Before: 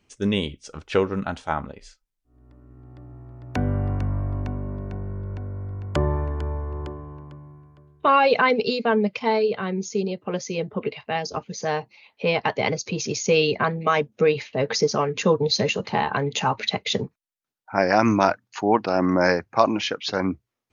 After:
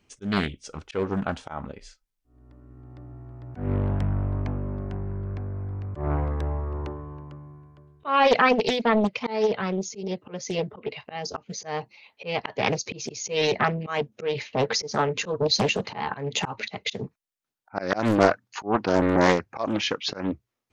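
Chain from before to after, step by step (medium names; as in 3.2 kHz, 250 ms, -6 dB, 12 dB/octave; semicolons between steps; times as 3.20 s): slow attack 182 ms; loudspeaker Doppler distortion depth 0.9 ms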